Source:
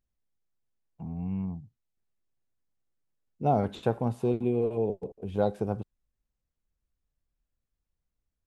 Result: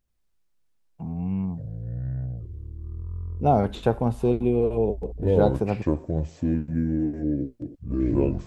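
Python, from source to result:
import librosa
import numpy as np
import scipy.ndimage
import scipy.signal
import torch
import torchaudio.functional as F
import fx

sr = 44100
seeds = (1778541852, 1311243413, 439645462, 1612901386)

y = fx.echo_pitch(x, sr, ms=81, semitones=-7, count=3, db_per_echo=-3.0)
y = y * librosa.db_to_amplitude(5.0)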